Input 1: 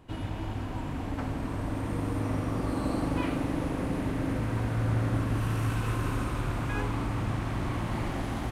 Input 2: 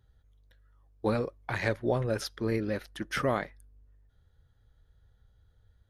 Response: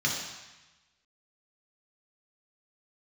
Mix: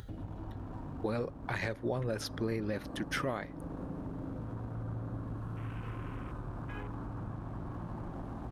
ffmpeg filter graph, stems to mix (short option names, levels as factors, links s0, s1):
-filter_complex "[0:a]afwtdn=0.0126,aeval=exprs='sgn(val(0))*max(abs(val(0))-0.00188,0)':c=same,volume=0.224[s0];[1:a]volume=1[s1];[s0][s1]amix=inputs=2:normalize=0,equalizer=f=170:w=5.9:g=4.5,acompressor=mode=upward:threshold=0.02:ratio=2.5,alimiter=limit=0.0708:level=0:latency=1:release=301"